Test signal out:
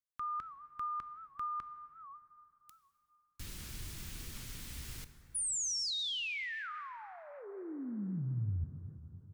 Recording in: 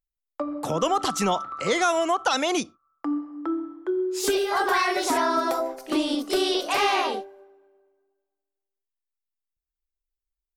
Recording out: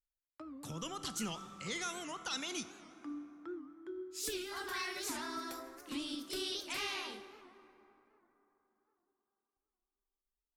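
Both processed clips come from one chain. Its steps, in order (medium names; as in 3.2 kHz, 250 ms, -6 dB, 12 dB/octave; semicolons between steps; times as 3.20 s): amplifier tone stack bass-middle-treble 6-0-2; plate-style reverb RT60 3.8 s, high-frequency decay 0.4×, DRR 10 dB; warped record 78 rpm, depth 160 cents; trim +4.5 dB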